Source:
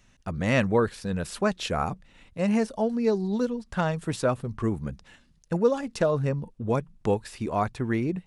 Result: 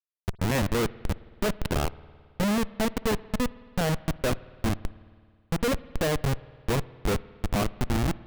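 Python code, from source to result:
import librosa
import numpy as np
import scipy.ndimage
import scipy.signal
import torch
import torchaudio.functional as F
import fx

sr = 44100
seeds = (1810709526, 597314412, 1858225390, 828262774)

y = fx.schmitt(x, sr, flips_db=-23.0)
y = fx.rev_spring(y, sr, rt60_s=2.0, pass_ms=(54,), chirp_ms=30, drr_db=19.0)
y = y * 10.0 ** (3.5 / 20.0)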